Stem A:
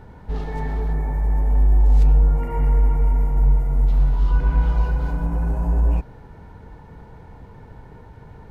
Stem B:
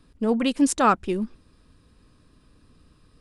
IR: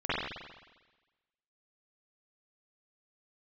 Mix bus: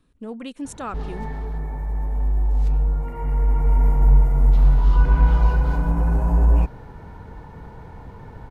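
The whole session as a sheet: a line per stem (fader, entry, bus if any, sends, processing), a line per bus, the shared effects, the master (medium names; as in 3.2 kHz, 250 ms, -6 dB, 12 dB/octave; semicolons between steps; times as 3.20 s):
+2.5 dB, 0.65 s, no send, peaking EQ 1.1 kHz +2.5 dB; auto duck -8 dB, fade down 1.45 s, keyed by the second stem
-7.0 dB, 0.00 s, no send, band-stop 4.9 kHz, Q 5.1; compression 1.5:1, threshold -30 dBFS, peak gain reduction 6 dB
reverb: none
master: none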